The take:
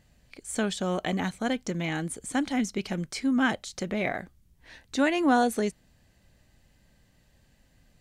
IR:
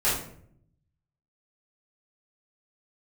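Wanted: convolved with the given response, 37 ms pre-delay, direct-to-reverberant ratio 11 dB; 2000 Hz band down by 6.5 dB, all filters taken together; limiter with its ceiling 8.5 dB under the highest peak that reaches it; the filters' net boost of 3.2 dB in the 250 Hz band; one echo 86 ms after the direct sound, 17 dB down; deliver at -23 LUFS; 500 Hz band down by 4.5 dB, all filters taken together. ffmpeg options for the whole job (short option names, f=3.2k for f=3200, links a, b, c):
-filter_complex "[0:a]equalizer=f=250:t=o:g=5.5,equalizer=f=500:t=o:g=-7.5,equalizer=f=2k:t=o:g=-8.5,alimiter=limit=-19.5dB:level=0:latency=1,aecho=1:1:86:0.141,asplit=2[a][b];[1:a]atrim=start_sample=2205,adelay=37[c];[b][c]afir=irnorm=-1:irlink=0,volume=-24dB[d];[a][d]amix=inputs=2:normalize=0,volume=6dB"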